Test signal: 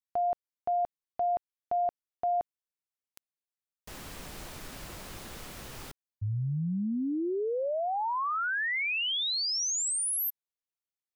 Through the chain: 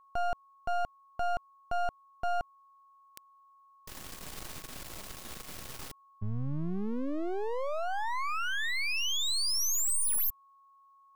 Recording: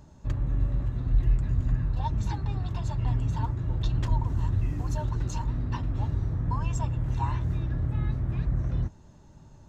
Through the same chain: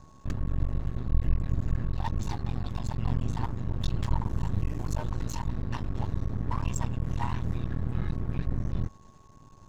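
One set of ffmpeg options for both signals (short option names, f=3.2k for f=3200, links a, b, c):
-af "highshelf=f=3.3k:g=4.5,aeval=exprs='max(val(0),0)':c=same,aeval=exprs='val(0)+0.001*sin(2*PI*1100*n/s)':c=same,volume=1.5dB"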